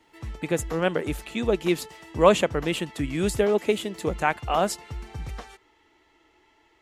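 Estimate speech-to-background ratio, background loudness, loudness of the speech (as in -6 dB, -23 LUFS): 15.0 dB, -40.0 LUFS, -25.0 LUFS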